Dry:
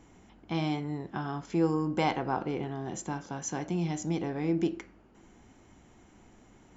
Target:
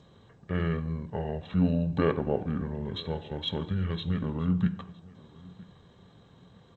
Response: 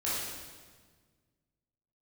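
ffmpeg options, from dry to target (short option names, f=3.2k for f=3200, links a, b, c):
-filter_complex "[0:a]highpass=120,lowshelf=f=330:g=-2,asplit=2[a][b];[1:a]atrim=start_sample=2205,afade=t=out:st=0.4:d=0.01,atrim=end_sample=18081[c];[b][c]afir=irnorm=-1:irlink=0,volume=-22.5dB[d];[a][d]amix=inputs=2:normalize=0,asetrate=24046,aresample=44100,atempo=1.83401,bandreject=f=1.3k:w=21,asplit=2[e][f];[f]adelay=962,lowpass=f=3k:p=1,volume=-22dB,asplit=2[g][h];[h]adelay=962,lowpass=f=3k:p=1,volume=0.26[i];[g][i]amix=inputs=2:normalize=0[j];[e][j]amix=inputs=2:normalize=0,volume=3dB" -ar 16000 -c:a g722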